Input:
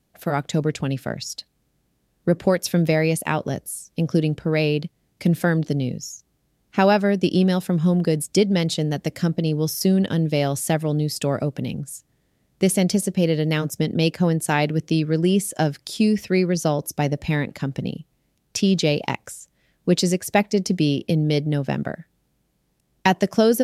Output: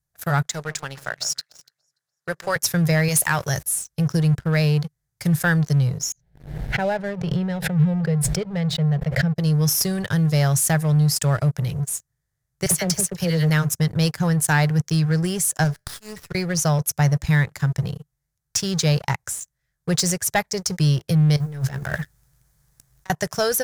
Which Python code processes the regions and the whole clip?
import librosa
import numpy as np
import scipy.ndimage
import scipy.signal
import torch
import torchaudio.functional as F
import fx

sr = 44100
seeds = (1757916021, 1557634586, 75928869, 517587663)

y = fx.chain(x, sr, fx.weighting(curve='A'),
    fx.echo_alternate(ms=145, hz=1200.0, feedback_pct=51, wet_db=-11.5), at=(0.46, 2.56))
y = fx.chain(y, sr, fx.tilt_eq(slope=2.0),
    fx.env_flatten(amount_pct=50), at=(3.08, 3.63))
y = fx.chain(y, sr, fx.air_absorb(metres=500.0),
    fx.fixed_phaser(hz=310.0, stages=6),
    fx.pre_swell(db_per_s=62.0), at=(6.12, 9.36))
y = fx.chain(y, sr, fx.dispersion(late='lows', ms=48.0, hz=1300.0),
    fx.band_squash(depth_pct=40), at=(12.66, 13.5))
y = fx.chain(y, sr, fx.auto_swell(attack_ms=108.0),
    fx.comb_fb(f0_hz=87.0, decay_s=0.33, harmonics='all', damping=0.0, mix_pct=40),
    fx.running_max(window=5), at=(15.64, 16.35))
y = fx.chain(y, sr, fx.law_mismatch(coded='mu'),
    fx.over_compress(threshold_db=-32.0, ratio=-1.0),
    fx.doubler(ms=15.0, db=-11.5), at=(21.36, 23.1))
y = fx.curve_eq(y, sr, hz=(150.0, 230.0, 390.0, 1700.0, 2700.0, 6200.0), db=(0, -25, -12, 3, -10, 7))
y = fx.leveller(y, sr, passes=3)
y = fx.bass_treble(y, sr, bass_db=3, treble_db=-3)
y = y * 10.0 ** (-6.5 / 20.0)